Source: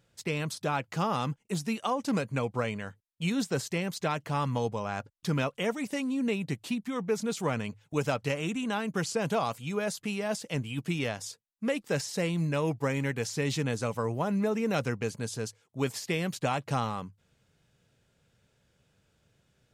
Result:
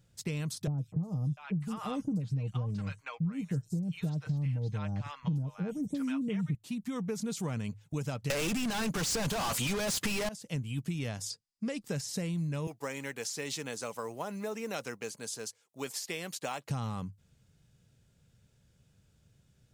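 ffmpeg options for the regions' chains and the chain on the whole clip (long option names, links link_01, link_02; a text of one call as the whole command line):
ffmpeg -i in.wav -filter_complex "[0:a]asettb=1/sr,asplit=3[link_01][link_02][link_03];[link_01]atrim=end=0.674[link_04];[link_02]atrim=start=0.67:end=6.55,asetpts=PTS-STARTPTS,afade=type=in:duration=0.004:curve=qsin,afade=type=out:start_time=5.876:duration=0.004:curve=qsin,bass=frequency=250:gain=10,treble=frequency=4000:gain=-6,aecho=1:1:6.5:0.47,atrim=end_sample=259308,acrossover=split=800|5400[link_05][link_06][link_07];[link_07]adelay=110[link_08];[link_06]adelay=700[link_09];[link_05][link_09][link_08]amix=inputs=3:normalize=0,atrim=end_sample=259308[link_10];[link_03]atrim=start=6.546[link_11];[link_04][link_10]acrossfade=duration=0.004:curve1=hsin:curve2=qsin[link_12];[link_12][link_11]acrossfade=duration=0.004:curve1=qsin:curve2=hsin,asettb=1/sr,asplit=3[link_13][link_14][link_15];[link_13]atrim=end=8.304[link_16];[link_14]atrim=start=8.3:end=10.29,asetpts=PTS-STARTPTS,afade=type=in:duration=0.004:curve=qsin,afade=type=out:start_time=1.986:duration=0.004:curve=qsin,acontrast=79,lowshelf=frequency=87:gain=-10.5,asplit=2[link_17][link_18];[link_18]highpass=frequency=720:poles=1,volume=37dB,asoftclip=type=tanh:threshold=-9dB[link_19];[link_17][link_19]amix=inputs=2:normalize=0,lowpass=frequency=5400:poles=1,volume=-6dB[link_20];[link_15]atrim=start=10.286[link_21];[link_16][link_20]acrossfade=duration=0.004:curve1=hsin:curve2=qsin[link_22];[link_22][link_21]acrossfade=duration=0.004:curve1=qsin:curve2=hsin,asettb=1/sr,asplit=3[link_23][link_24][link_25];[link_23]atrim=end=11.304[link_26];[link_24]atrim=start=11.3:end=11.81,asetpts=PTS-STARTPTS,afade=type=in:duration=0.004:curve=qsin,afade=type=out:start_time=0.506:duration=0.004:curve=qsin,lowpass=frequency=9700:width=0.5412,lowpass=frequency=9700:width=1.3066,equalizer=frequency=4900:width=5.7:gain=12.5[link_27];[link_25]atrim=start=11.806[link_28];[link_26][link_27]acrossfade=duration=0.004:curve1=hsin:curve2=qsin[link_29];[link_29][link_28]acrossfade=duration=0.004:curve1=qsin:curve2=hsin,asettb=1/sr,asplit=3[link_30][link_31][link_32];[link_30]atrim=end=12.674[link_33];[link_31]atrim=start=12.67:end=16.7,asetpts=PTS-STARTPTS,afade=type=in:duration=0.004:curve=qsin,afade=type=out:start_time=4.026:duration=0.004:curve=qsin,highpass=450,acrusher=bits=8:mode=log:mix=0:aa=0.000001[link_34];[link_32]atrim=start=16.696[link_35];[link_33][link_34]acrossfade=duration=0.004:curve1=hsin:curve2=qsin[link_36];[link_36][link_35]acrossfade=duration=0.004:curve1=qsin:curve2=hsin,bass=frequency=250:gain=11,treble=frequency=4000:gain=7,acompressor=threshold=-26dB:ratio=6,volume=-5dB" out.wav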